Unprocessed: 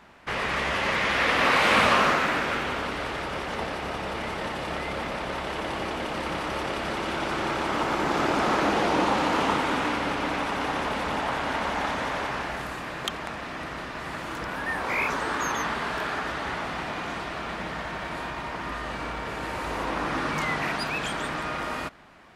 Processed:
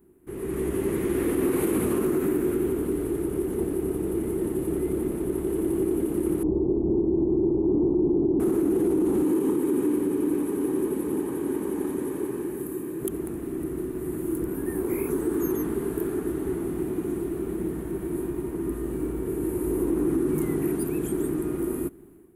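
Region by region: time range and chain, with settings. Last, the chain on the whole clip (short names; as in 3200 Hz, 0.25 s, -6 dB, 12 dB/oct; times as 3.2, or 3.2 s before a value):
6.43–8.4 steep low-pass 1000 Hz 48 dB/oct + tilt -1.5 dB/oct
9.24–13.01 HPF 190 Hz 6 dB/oct + notch comb 690 Hz
whole clip: EQ curve 230 Hz 0 dB, 370 Hz +13 dB, 560 Hz -17 dB, 5200 Hz -27 dB, 11000 Hz +12 dB; limiter -20.5 dBFS; AGC gain up to 9 dB; gain -4.5 dB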